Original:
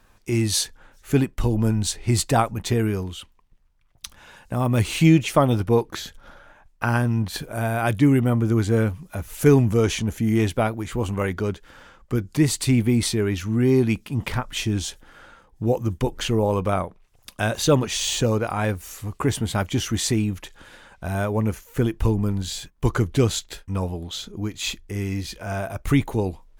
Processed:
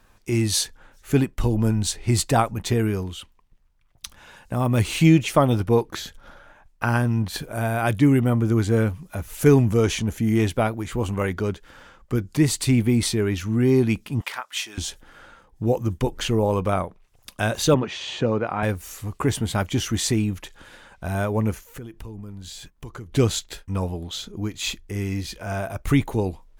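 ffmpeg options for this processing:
ffmpeg -i in.wav -filter_complex "[0:a]asettb=1/sr,asplit=3[link_01][link_02][link_03];[link_01]atrim=end=14.214[link_04];[link_02]atrim=start=14.21:end=14.78,asetpts=PTS-STARTPTS,afade=type=in:duration=0.004:curve=qsin,afade=type=out:start_time=0.566:duration=0.004:curve=qsin,highpass=930[link_05];[link_03]atrim=start=14.776[link_06];[link_04][link_05]acrossfade=duration=0.004:curve1=hsin:curve2=qsin[link_07];[link_07][link_06]acrossfade=duration=0.004:curve1=qsin:curve2=hsin,asettb=1/sr,asplit=3[link_08][link_09][link_10];[link_08]atrim=end=17.744[link_11];[link_09]atrim=start=17.74:end=18.63,asetpts=PTS-STARTPTS,afade=type=in:duration=0.004:curve=qsin,afade=type=out:start_time=0.886:duration=0.004:curve=qsin,highpass=130,lowpass=2700[link_12];[link_10]atrim=start=18.626[link_13];[link_11][link_12]acrossfade=duration=0.004:curve1=hsin:curve2=qsin[link_14];[link_14][link_13]acrossfade=duration=0.004:curve1=qsin:curve2=hsin,asettb=1/sr,asplit=3[link_15][link_16][link_17];[link_15]atrim=end=21.674[link_18];[link_16]atrim=start=21.67:end=23.13,asetpts=PTS-STARTPTS,afade=type=in:duration=0.004:curve=qsin,afade=type=out:start_time=1.456:duration=0.004:curve=qsin,acompressor=threshold=-36dB:ratio=4:attack=3.2:release=140:knee=1:detection=peak[link_19];[link_17]atrim=start=23.126[link_20];[link_18][link_19]acrossfade=duration=0.004:curve1=hsin:curve2=qsin[link_21];[link_21][link_20]acrossfade=duration=0.004:curve1=qsin:curve2=hsin" out.wav

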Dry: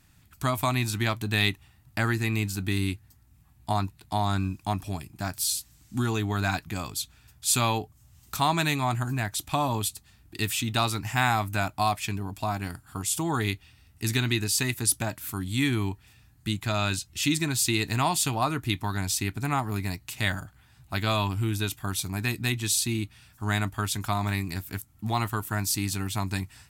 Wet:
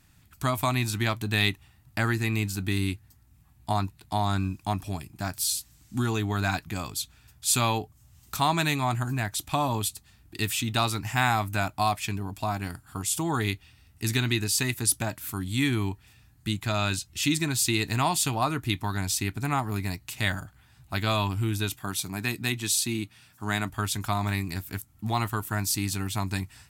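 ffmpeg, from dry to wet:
ffmpeg -i in.wav -filter_complex "[0:a]asettb=1/sr,asplit=3[link_01][link_02][link_03];[link_01]atrim=end=21.774[link_04];[link_02]atrim=start=21.77:end=23.7,asetpts=PTS-STARTPTS,afade=type=in:duration=0.004:curve=qsin,afade=type=out:start_time=1.926:duration=0.004:curve=qsin,highpass=130[link_05];[link_03]atrim=start=23.696[link_06];[link_04][link_05]acrossfade=duration=0.004:curve1=hsin:curve2=qsin[link_07];[link_07][link_06]acrossfade=duration=0.004:curve1=qsin:curve2=hsin" out.wav

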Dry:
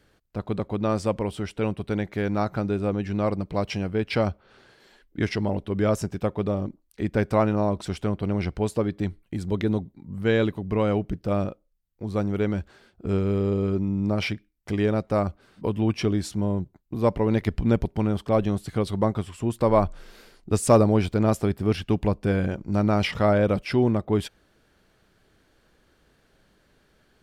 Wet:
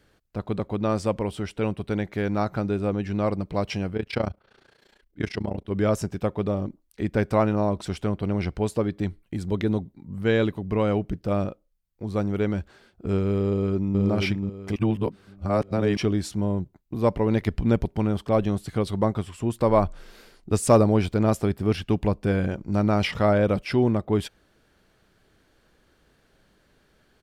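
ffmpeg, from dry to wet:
ffmpeg -i in.wav -filter_complex "[0:a]asplit=3[link_01][link_02][link_03];[link_01]afade=type=out:start_time=3.94:duration=0.02[link_04];[link_02]tremolo=f=29:d=0.889,afade=type=in:start_time=3.94:duration=0.02,afade=type=out:start_time=5.69:duration=0.02[link_05];[link_03]afade=type=in:start_time=5.69:duration=0.02[link_06];[link_04][link_05][link_06]amix=inputs=3:normalize=0,asplit=2[link_07][link_08];[link_08]afade=type=in:start_time=13.46:duration=0.01,afade=type=out:start_time=14.01:duration=0.01,aecho=0:1:480|960|1440|1920:0.668344|0.200503|0.060151|0.0180453[link_09];[link_07][link_09]amix=inputs=2:normalize=0,asplit=3[link_10][link_11][link_12];[link_10]atrim=end=14.762[link_13];[link_11]atrim=start=14.758:end=15.972,asetpts=PTS-STARTPTS,areverse[link_14];[link_12]atrim=start=15.968[link_15];[link_13][link_14]acrossfade=duration=0.004:curve1=hsin:curve2=hsin[link_16];[link_16][link_15]acrossfade=duration=0.004:curve1=hsin:curve2=hsin" out.wav

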